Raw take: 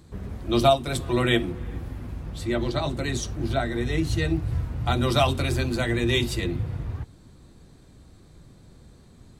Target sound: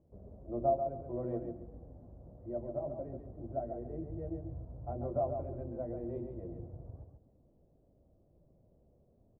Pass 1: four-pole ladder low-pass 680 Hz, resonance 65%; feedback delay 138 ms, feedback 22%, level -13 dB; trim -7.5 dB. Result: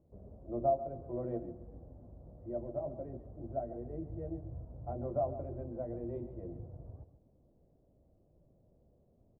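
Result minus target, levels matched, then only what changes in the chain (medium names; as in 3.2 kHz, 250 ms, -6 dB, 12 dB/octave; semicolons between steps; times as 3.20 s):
echo-to-direct -6.5 dB
change: feedback delay 138 ms, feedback 22%, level -6.5 dB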